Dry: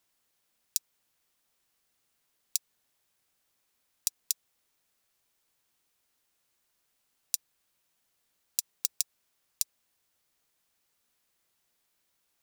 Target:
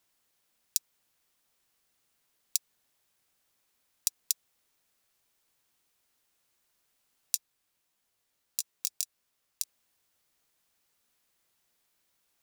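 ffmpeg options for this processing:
-filter_complex "[0:a]asplit=3[a][b][c];[a]afade=t=out:st=7.35:d=0.02[d];[b]flanger=delay=15:depth=7.8:speed=1.5,afade=t=in:st=7.35:d=0.02,afade=t=out:st=9.62:d=0.02[e];[c]afade=t=in:st=9.62:d=0.02[f];[d][e][f]amix=inputs=3:normalize=0,volume=1dB"

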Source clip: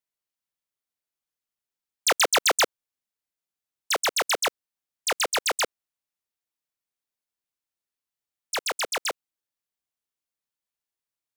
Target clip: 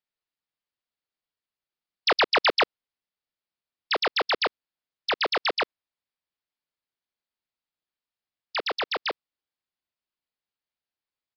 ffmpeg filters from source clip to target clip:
-af "asetrate=40440,aresample=44100,atempo=1.09051,aresample=11025,aresample=44100"

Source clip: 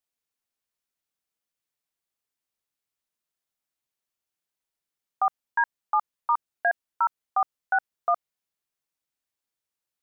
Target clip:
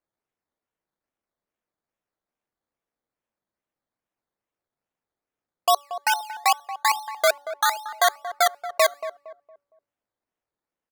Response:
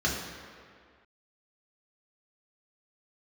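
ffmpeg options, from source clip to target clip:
-filter_complex "[0:a]equalizer=f=470:w=0.32:g=15,bandreject=f=430:w=12,bandreject=f=311.5:t=h:w=4,bandreject=f=623:t=h:w=4,bandreject=f=934.5:t=h:w=4,bandreject=f=1.246k:t=h:w=4,bandreject=f=1.5575k:t=h:w=4,bandreject=f=1.869k:t=h:w=4,bandreject=f=2.1805k:t=h:w=4,bandreject=f=2.492k:t=h:w=4,bandreject=f=2.8035k:t=h:w=4,bandreject=f=3.115k:t=h:w=4,bandreject=f=3.4265k:t=h:w=4,bandreject=f=3.738k:t=h:w=4,bandreject=f=4.0495k:t=h:w=4,bandreject=f=4.361k:t=h:w=4,bandreject=f=4.6725k:t=h:w=4,bandreject=f=4.984k:t=h:w=4,bandreject=f=5.2955k:t=h:w=4,bandreject=f=5.607k:t=h:w=4,bandreject=f=5.9185k:t=h:w=4,bandreject=f=6.23k:t=h:w=4,bandreject=f=6.5415k:t=h:w=4,bandreject=f=6.853k:t=h:w=4,bandreject=f=7.1645k:t=h:w=4,bandreject=f=7.476k:t=h:w=4,bandreject=f=7.7875k:t=h:w=4,bandreject=f=8.099k:t=h:w=4,bandreject=f=8.4105k:t=h:w=4,bandreject=f=8.722k:t=h:w=4,bandreject=f=9.0335k:t=h:w=4,bandreject=f=9.345k:t=h:w=4,bandreject=f=9.6565k:t=h:w=4,bandreject=f=9.968k:t=h:w=4,acrusher=samples=12:mix=1:aa=0.000001:lfo=1:lforange=7.2:lforate=2.6,asplit=2[a][b];[b]adelay=212,lowpass=f=970:p=1,volume=-10dB,asplit=2[c][d];[d]adelay=212,lowpass=f=970:p=1,volume=0.4,asplit=2[e][f];[f]adelay=212,lowpass=f=970:p=1,volume=0.4,asplit=2[g][h];[h]adelay=212,lowpass=f=970:p=1,volume=0.4[i];[a][c][e][g][i]amix=inputs=5:normalize=0,asetrate=40517,aresample=44100,volume=-7dB"

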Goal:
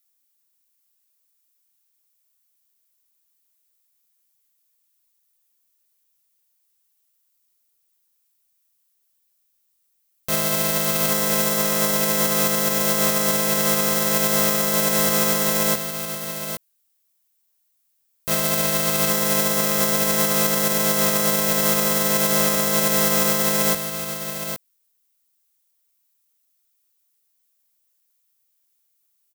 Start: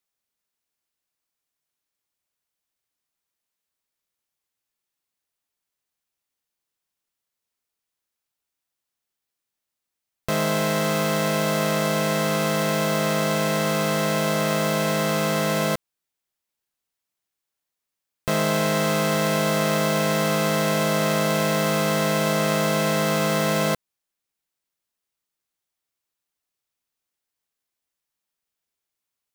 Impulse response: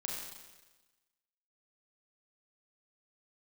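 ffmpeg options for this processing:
-filter_complex "[0:a]aemphasis=mode=production:type=75kf,alimiter=limit=-3.5dB:level=0:latency=1:release=62,asplit=2[a][b];[b]aecho=0:1:814:0.376[c];[a][c]amix=inputs=2:normalize=0,volume=-1dB"

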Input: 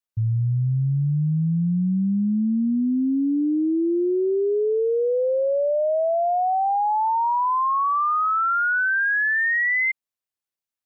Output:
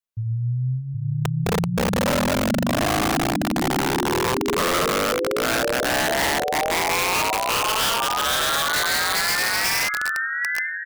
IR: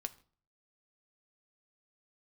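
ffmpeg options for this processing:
-filter_complex "[0:a]aecho=1:1:770|1270|1596|1807|1945:0.631|0.398|0.251|0.158|0.1[a];[1:a]atrim=start_sample=2205,afade=t=out:st=0.24:d=0.01,atrim=end_sample=11025[b];[a][b]afir=irnorm=-1:irlink=0,aeval=exprs='(mod(6.68*val(0)+1,2)-1)/6.68':c=same"

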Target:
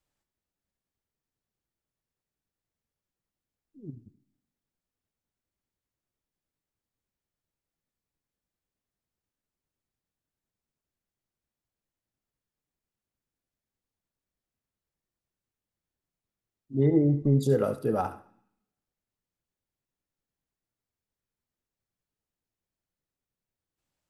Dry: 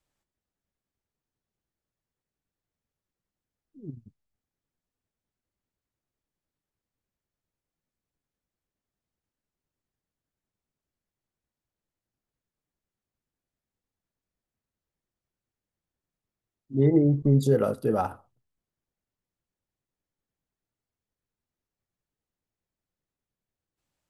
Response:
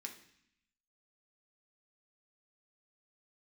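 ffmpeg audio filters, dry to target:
-filter_complex "[0:a]asplit=2[a][b];[1:a]atrim=start_sample=2205,lowshelf=f=380:g=-7,adelay=72[c];[b][c]afir=irnorm=-1:irlink=0,volume=-8dB[d];[a][d]amix=inputs=2:normalize=0,volume=-2dB"

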